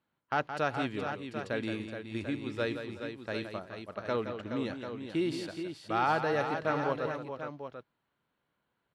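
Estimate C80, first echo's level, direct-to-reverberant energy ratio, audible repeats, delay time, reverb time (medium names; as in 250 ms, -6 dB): no reverb, -9.0 dB, no reverb, 4, 170 ms, no reverb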